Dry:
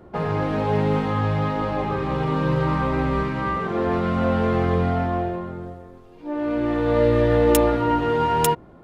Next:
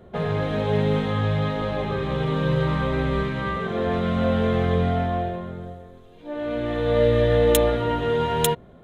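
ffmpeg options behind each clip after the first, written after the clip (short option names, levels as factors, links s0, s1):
-af "superequalizer=6b=0.447:9b=0.501:10b=0.631:13b=2:14b=0.562"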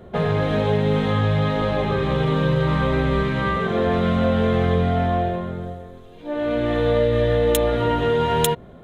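-af "acompressor=threshold=0.1:ratio=6,volume=1.78"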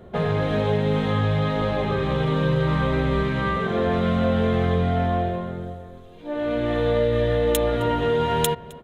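-filter_complex "[0:a]asplit=2[s0][s1];[s1]adelay=262.4,volume=0.1,highshelf=f=4000:g=-5.9[s2];[s0][s2]amix=inputs=2:normalize=0,volume=0.794"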